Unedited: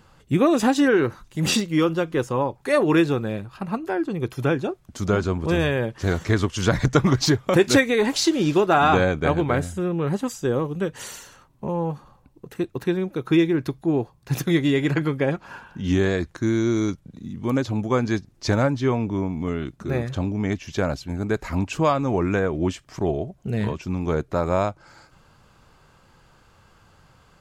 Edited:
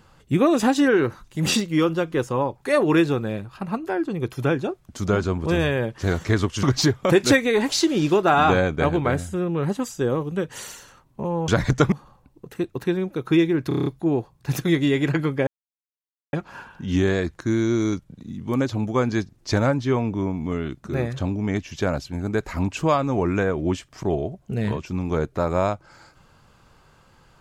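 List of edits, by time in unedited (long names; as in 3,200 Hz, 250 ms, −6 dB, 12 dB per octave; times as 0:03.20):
0:06.63–0:07.07: move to 0:11.92
0:13.68: stutter 0.03 s, 7 plays
0:15.29: splice in silence 0.86 s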